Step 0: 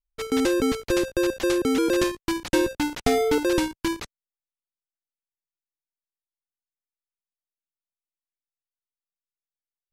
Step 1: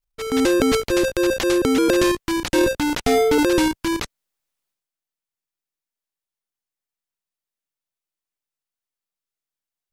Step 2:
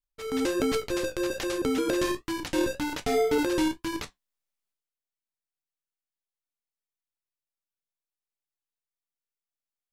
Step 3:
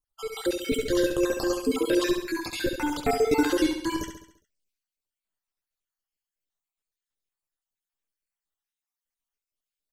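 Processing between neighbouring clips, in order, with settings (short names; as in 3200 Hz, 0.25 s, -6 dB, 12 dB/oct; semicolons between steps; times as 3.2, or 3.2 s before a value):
transient shaper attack -4 dB, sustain +9 dB; gain +4.5 dB
flange 1.3 Hz, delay 9.6 ms, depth 5.1 ms, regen -54%; reverb, pre-delay 7 ms, DRR 13.5 dB; gain -5 dB
random spectral dropouts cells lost 57%; feedback echo 68 ms, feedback 50%, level -7 dB; gain +4.5 dB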